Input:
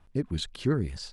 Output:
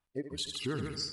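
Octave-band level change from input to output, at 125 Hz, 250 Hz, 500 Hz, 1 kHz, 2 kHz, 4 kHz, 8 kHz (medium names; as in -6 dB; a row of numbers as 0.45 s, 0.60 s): -11.0 dB, -8.5 dB, -6.0 dB, -2.5 dB, -1.0 dB, +1.5 dB, +2.5 dB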